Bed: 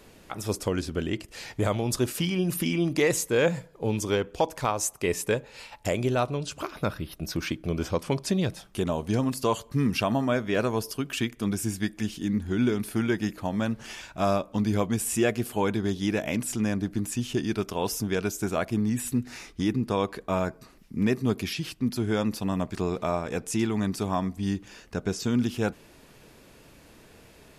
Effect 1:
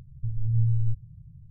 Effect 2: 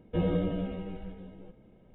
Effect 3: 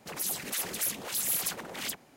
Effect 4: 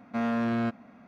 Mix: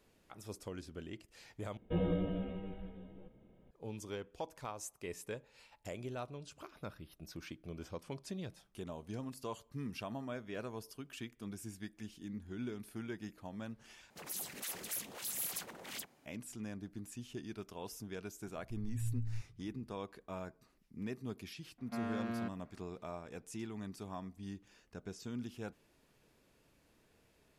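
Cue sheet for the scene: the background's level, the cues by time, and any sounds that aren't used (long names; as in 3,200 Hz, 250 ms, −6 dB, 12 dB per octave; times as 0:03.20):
bed −17.5 dB
0:01.77: overwrite with 2 −5.5 dB
0:14.10: overwrite with 3 −9.5 dB
0:18.47: mix in 1 −15 dB
0:21.78: mix in 4 −11.5 dB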